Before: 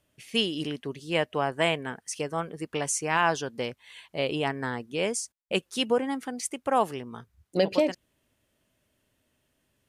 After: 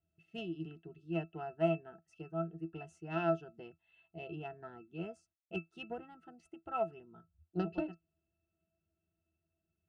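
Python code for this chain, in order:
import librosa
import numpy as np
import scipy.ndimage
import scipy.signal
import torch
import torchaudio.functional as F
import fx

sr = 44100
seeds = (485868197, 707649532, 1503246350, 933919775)

y = fx.cheby_harmonics(x, sr, harmonics=(2, 3), levels_db=(-28, -14), full_scale_db=-10.0)
y = fx.octave_resonator(y, sr, note='E', decay_s=0.13)
y = F.gain(torch.from_numpy(y), 5.5).numpy()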